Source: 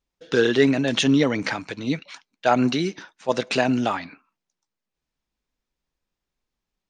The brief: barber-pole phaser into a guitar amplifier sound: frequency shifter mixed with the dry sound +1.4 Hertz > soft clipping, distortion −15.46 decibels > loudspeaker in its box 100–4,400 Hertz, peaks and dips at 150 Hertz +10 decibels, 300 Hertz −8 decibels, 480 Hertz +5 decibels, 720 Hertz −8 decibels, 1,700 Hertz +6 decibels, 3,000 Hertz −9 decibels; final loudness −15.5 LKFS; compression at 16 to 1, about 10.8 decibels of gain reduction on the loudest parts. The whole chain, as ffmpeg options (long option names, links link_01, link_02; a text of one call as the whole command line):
ffmpeg -i in.wav -filter_complex "[0:a]acompressor=threshold=-24dB:ratio=16,asplit=2[link_01][link_02];[link_02]afreqshift=1.4[link_03];[link_01][link_03]amix=inputs=2:normalize=1,asoftclip=threshold=-25.5dB,highpass=100,equalizer=frequency=150:width_type=q:width=4:gain=10,equalizer=frequency=300:width_type=q:width=4:gain=-8,equalizer=frequency=480:width_type=q:width=4:gain=5,equalizer=frequency=720:width_type=q:width=4:gain=-8,equalizer=frequency=1700:width_type=q:width=4:gain=6,equalizer=frequency=3000:width_type=q:width=4:gain=-9,lowpass=frequency=4400:width=0.5412,lowpass=frequency=4400:width=1.3066,volume=20.5dB" out.wav